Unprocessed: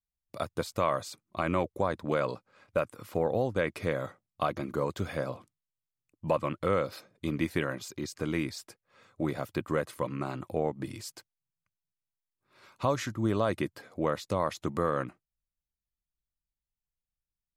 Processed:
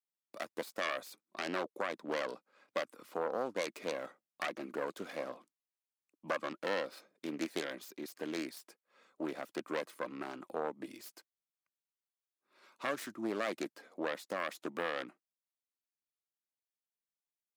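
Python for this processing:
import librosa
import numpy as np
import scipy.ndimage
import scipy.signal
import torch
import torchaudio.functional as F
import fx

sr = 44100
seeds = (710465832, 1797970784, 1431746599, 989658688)

y = fx.self_delay(x, sr, depth_ms=0.4)
y = scipy.signal.sosfilt(scipy.signal.butter(4, 230.0, 'highpass', fs=sr, output='sos'), y)
y = y * librosa.db_to_amplitude(-6.0)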